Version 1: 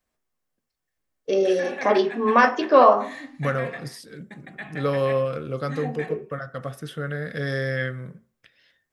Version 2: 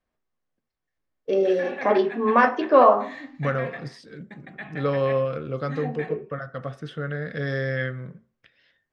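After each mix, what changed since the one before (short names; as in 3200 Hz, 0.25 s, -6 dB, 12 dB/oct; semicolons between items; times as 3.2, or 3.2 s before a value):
first voice: add high shelf 3600 Hz -7 dB; master: add air absorption 120 m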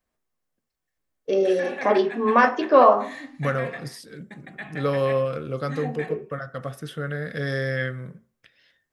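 master: remove air absorption 120 m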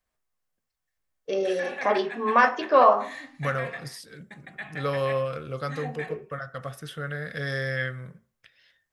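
master: add bell 280 Hz -8 dB 1.9 oct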